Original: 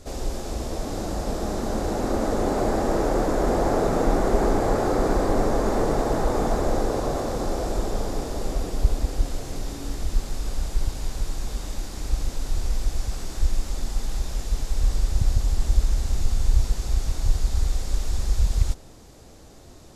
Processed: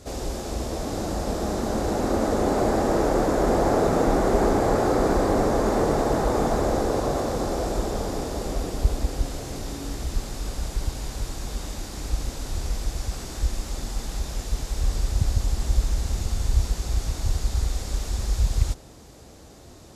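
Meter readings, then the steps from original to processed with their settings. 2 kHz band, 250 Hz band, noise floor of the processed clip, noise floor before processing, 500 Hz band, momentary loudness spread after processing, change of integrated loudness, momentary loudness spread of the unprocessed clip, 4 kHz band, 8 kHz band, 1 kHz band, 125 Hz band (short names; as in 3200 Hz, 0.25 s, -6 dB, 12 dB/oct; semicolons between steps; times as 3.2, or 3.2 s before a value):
+1.5 dB, +1.5 dB, -46 dBFS, -45 dBFS, +1.5 dB, 11 LU, +0.5 dB, 10 LU, +1.5 dB, +1.5 dB, +1.5 dB, 0.0 dB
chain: HPF 41 Hz; gain +1.5 dB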